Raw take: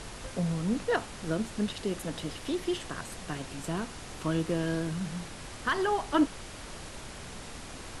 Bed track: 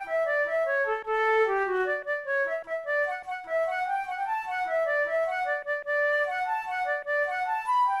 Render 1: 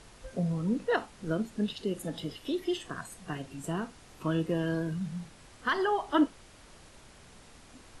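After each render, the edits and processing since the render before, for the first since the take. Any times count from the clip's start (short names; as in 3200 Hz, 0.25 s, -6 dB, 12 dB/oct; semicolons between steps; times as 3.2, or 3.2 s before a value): noise print and reduce 11 dB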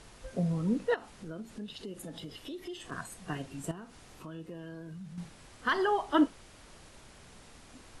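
0.94–2.92 compressor 3:1, threshold -41 dBFS; 3.71–5.18 compressor 2.5:1, threshold -47 dBFS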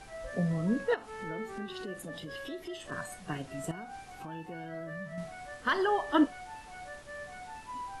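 add bed track -17 dB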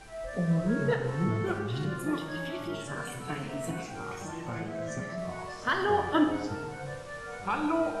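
echoes that change speed 0.329 s, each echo -4 st, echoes 2; plate-style reverb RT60 1.2 s, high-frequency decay 0.9×, DRR 4 dB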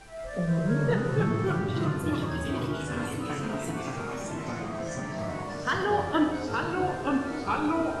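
delay with a stepping band-pass 0.575 s, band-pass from 220 Hz, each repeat 0.7 oct, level -10.5 dB; echoes that change speed 0.171 s, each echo -2 st, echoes 3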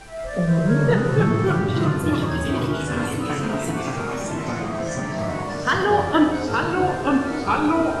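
gain +7.5 dB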